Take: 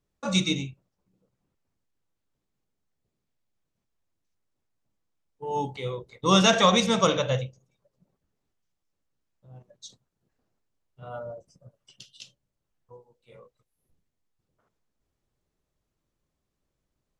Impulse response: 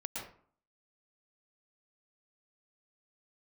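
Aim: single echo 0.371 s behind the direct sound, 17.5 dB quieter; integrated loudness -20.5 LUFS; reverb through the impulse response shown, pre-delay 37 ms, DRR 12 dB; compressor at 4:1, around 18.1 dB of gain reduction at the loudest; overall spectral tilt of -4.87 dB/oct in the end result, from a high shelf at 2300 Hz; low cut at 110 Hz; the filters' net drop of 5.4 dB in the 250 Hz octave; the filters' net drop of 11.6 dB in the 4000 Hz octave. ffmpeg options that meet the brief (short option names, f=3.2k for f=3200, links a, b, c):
-filter_complex "[0:a]highpass=110,equalizer=f=250:t=o:g=-7.5,highshelf=f=2.3k:g=-7.5,equalizer=f=4k:t=o:g=-7.5,acompressor=threshold=-41dB:ratio=4,aecho=1:1:371:0.133,asplit=2[a][b];[1:a]atrim=start_sample=2205,adelay=37[c];[b][c]afir=irnorm=-1:irlink=0,volume=-13dB[d];[a][d]amix=inputs=2:normalize=0,volume=25dB"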